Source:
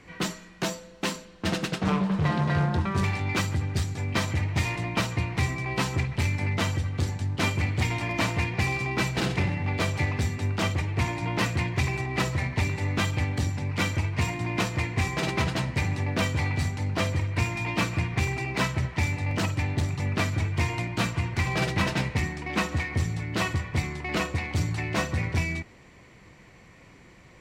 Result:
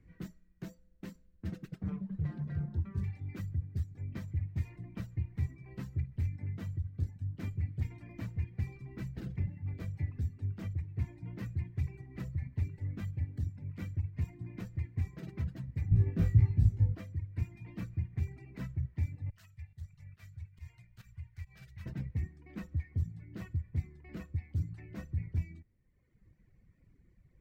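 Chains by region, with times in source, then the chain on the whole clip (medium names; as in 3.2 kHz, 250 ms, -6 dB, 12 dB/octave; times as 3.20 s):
15.91–16.95 s: bass shelf 320 Hz +11.5 dB + flutter echo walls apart 3.1 m, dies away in 0.5 s
19.30–21.86 s: amplifier tone stack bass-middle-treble 10-0-10 + volume shaper 140 bpm, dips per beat 1, -14 dB, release 113 ms + doubling 15 ms -13.5 dB
whole clip: amplifier tone stack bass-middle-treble 10-0-1; reverb removal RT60 1.3 s; high-order bell 5.3 kHz -12.5 dB 2.4 oct; trim +5 dB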